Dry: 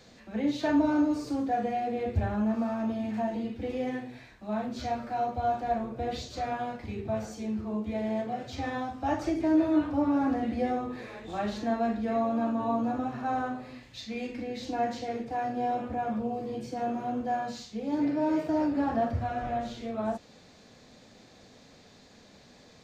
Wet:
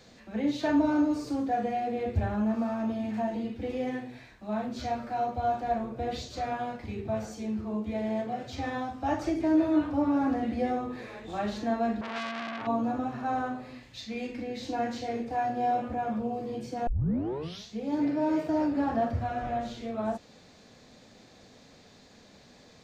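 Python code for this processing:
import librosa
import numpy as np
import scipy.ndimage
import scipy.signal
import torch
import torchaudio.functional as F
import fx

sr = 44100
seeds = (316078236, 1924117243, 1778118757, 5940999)

y = fx.transformer_sat(x, sr, knee_hz=2400.0, at=(12.01, 12.67))
y = fx.doubler(y, sr, ms=26.0, db=-6.5, at=(14.62, 15.93))
y = fx.edit(y, sr, fx.tape_start(start_s=16.87, length_s=0.86), tone=tone)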